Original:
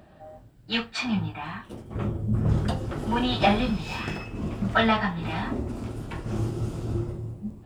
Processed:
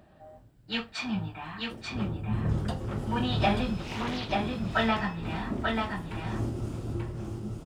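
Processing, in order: delay 887 ms -3.5 dB; 3.82–4.32 s: loudspeaker Doppler distortion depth 0.47 ms; trim -5 dB

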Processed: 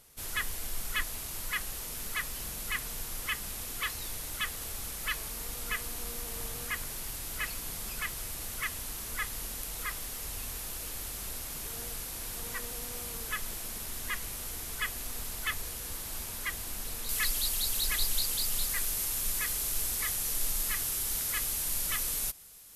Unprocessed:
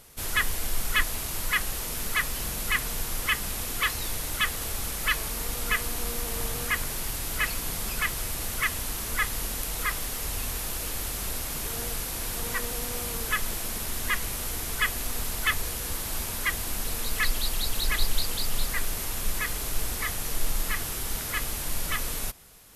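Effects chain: peaking EQ 12 kHz +3.5 dB 2.6 oct, from 17.09 s +11.5 dB; trim -9 dB

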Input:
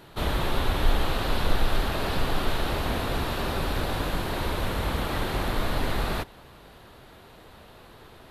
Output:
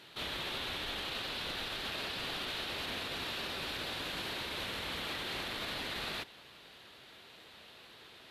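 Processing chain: frequency weighting D; peak limiter -21 dBFS, peak gain reduction 8 dB; trim -9 dB

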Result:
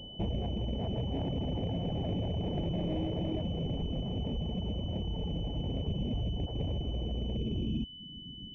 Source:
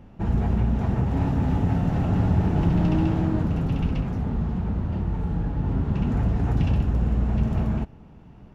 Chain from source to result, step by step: saturation -22 dBFS, distortion -11 dB; 5.88–6.46 s: bass shelf 380 Hz +7 dB; compression 6:1, threshold -28 dBFS, peak gain reduction 10 dB; low-pass sweep 600 Hz -> 260 Hz, 7.16–7.89 s; reverb removal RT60 0.71 s; class-D stage that switches slowly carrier 3 kHz; trim -2 dB

